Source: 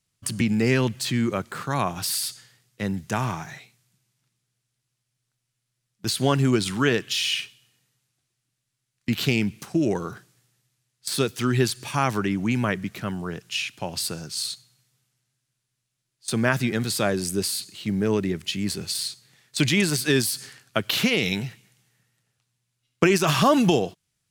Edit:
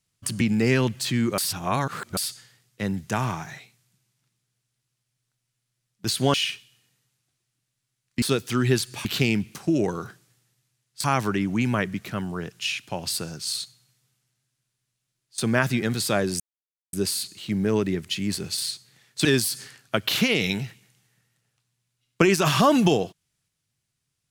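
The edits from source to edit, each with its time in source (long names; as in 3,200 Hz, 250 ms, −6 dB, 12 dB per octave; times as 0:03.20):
0:01.38–0:02.17: reverse
0:06.34–0:07.24: remove
0:11.11–0:11.94: move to 0:09.12
0:17.30: splice in silence 0.53 s
0:19.62–0:20.07: remove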